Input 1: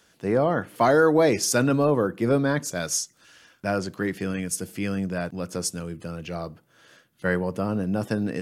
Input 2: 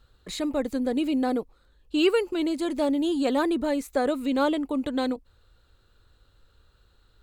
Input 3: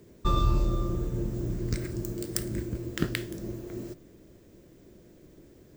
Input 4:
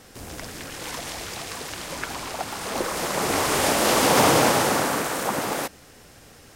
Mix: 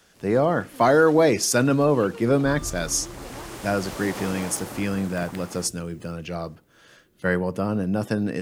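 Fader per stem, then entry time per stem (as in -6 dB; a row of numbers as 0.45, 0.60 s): +1.5, -19.5, -12.0, -17.0 dB; 0.00, 0.00, 2.20, 0.00 s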